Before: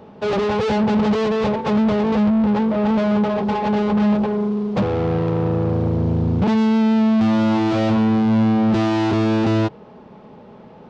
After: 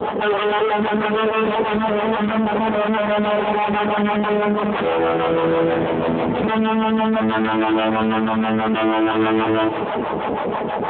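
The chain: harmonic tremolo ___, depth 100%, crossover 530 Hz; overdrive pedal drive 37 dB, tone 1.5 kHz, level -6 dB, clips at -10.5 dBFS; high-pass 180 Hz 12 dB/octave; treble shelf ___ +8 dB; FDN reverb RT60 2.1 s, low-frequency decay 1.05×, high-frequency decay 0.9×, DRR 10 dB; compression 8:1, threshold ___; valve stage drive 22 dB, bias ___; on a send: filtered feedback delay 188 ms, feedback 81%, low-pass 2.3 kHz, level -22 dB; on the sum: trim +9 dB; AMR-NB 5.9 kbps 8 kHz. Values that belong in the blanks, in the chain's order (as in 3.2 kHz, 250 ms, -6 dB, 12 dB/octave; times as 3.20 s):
6.2 Hz, 2.5 kHz, -18 dBFS, 0.75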